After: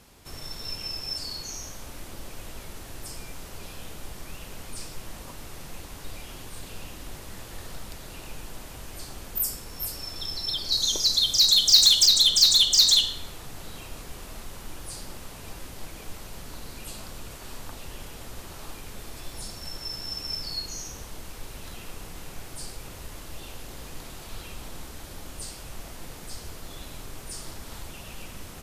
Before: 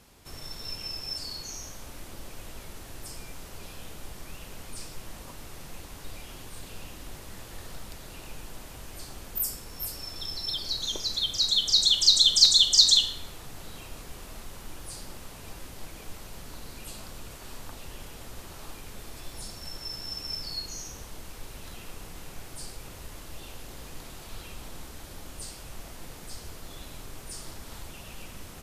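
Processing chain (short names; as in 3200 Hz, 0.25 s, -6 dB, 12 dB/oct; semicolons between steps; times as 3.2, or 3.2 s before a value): 10.72–12.06 resonant high shelf 3600 Hz +6.5 dB, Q 1.5; in parallel at -6.5 dB: wavefolder -18 dBFS; on the sum: gain -1 dB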